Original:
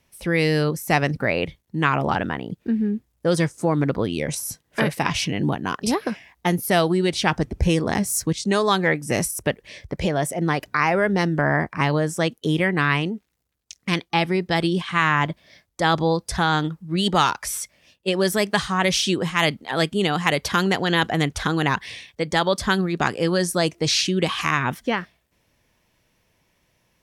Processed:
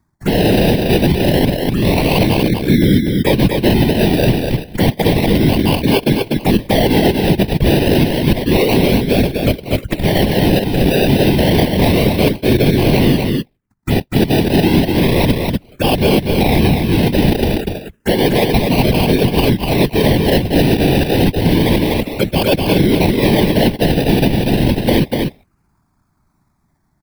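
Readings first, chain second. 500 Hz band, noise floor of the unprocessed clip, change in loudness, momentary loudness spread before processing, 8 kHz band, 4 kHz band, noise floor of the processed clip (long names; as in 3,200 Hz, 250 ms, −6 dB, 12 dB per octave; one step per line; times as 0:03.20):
+9.0 dB, −69 dBFS, +8.0 dB, 7 LU, −1.0 dB, +6.0 dB, −63 dBFS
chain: loose part that buzzes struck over −22 dBFS, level −24 dBFS
low-pass that shuts in the quiet parts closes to 1,100 Hz, open at −17.5 dBFS
noise gate −48 dBFS, range −15 dB
reversed playback
downward compressor 6 to 1, threshold −31 dBFS, peak gain reduction 16.5 dB
reversed playback
spectral peaks only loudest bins 64
sample-and-hold swept by an LFO 32×, swing 60% 0.3 Hz
random phases in short frames
phaser swept by the level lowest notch 500 Hz, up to 1,300 Hz, full sweep at −35.5 dBFS
on a send: single-tap delay 244 ms −5 dB
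on the sum: boost into a limiter +23.5 dB
level −1 dB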